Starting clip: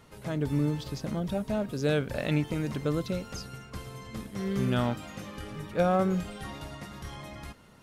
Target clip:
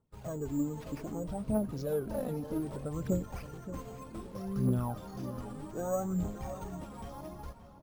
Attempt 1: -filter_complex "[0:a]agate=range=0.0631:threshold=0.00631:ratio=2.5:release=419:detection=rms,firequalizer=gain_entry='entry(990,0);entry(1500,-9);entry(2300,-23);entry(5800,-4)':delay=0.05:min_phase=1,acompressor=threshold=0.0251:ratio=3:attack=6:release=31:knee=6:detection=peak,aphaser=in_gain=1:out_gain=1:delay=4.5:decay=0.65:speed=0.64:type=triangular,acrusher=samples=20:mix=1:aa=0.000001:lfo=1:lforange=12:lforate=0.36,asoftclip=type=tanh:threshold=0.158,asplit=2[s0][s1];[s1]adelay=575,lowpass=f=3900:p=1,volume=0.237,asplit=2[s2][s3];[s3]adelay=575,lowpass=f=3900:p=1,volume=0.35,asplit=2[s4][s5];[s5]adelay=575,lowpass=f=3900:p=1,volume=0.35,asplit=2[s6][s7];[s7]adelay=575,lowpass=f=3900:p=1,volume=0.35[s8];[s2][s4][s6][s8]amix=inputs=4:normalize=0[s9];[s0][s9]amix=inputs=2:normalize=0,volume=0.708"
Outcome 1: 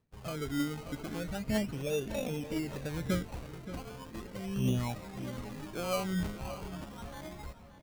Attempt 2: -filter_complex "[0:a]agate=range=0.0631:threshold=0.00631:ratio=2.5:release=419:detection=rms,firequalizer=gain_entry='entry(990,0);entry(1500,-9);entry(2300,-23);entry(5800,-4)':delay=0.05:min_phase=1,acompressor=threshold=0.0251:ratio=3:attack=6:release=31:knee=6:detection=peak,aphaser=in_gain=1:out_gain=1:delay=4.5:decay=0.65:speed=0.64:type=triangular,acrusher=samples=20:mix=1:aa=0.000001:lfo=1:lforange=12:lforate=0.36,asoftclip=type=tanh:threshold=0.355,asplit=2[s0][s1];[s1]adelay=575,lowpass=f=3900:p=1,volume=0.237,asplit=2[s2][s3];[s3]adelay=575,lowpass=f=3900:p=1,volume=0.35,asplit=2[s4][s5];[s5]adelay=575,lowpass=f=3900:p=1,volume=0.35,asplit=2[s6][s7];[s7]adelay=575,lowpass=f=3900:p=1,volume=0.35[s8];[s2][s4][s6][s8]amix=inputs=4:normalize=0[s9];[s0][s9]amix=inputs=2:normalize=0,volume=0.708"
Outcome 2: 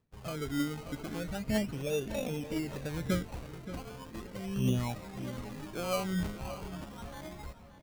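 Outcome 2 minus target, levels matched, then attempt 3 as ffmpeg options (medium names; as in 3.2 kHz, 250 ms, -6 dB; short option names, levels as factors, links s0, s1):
decimation with a swept rate: distortion +12 dB
-filter_complex "[0:a]agate=range=0.0631:threshold=0.00631:ratio=2.5:release=419:detection=rms,firequalizer=gain_entry='entry(990,0);entry(1500,-9);entry(2300,-23);entry(5800,-4)':delay=0.05:min_phase=1,acompressor=threshold=0.0251:ratio=3:attack=6:release=31:knee=6:detection=peak,aphaser=in_gain=1:out_gain=1:delay=4.5:decay=0.65:speed=0.64:type=triangular,acrusher=samples=5:mix=1:aa=0.000001:lfo=1:lforange=3:lforate=0.36,asoftclip=type=tanh:threshold=0.355,asplit=2[s0][s1];[s1]adelay=575,lowpass=f=3900:p=1,volume=0.237,asplit=2[s2][s3];[s3]adelay=575,lowpass=f=3900:p=1,volume=0.35,asplit=2[s4][s5];[s5]adelay=575,lowpass=f=3900:p=1,volume=0.35,asplit=2[s6][s7];[s7]adelay=575,lowpass=f=3900:p=1,volume=0.35[s8];[s2][s4][s6][s8]amix=inputs=4:normalize=0[s9];[s0][s9]amix=inputs=2:normalize=0,volume=0.708"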